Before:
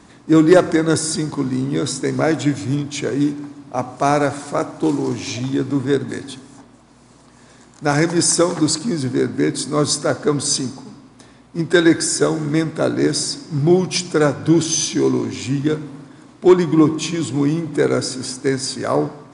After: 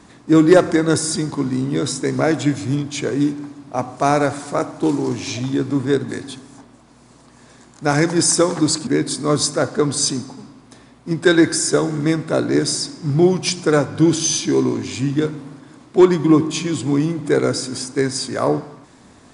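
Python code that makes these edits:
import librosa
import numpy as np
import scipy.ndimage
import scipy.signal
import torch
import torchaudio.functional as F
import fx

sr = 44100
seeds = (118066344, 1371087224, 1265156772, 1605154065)

y = fx.edit(x, sr, fx.cut(start_s=8.87, length_s=0.48), tone=tone)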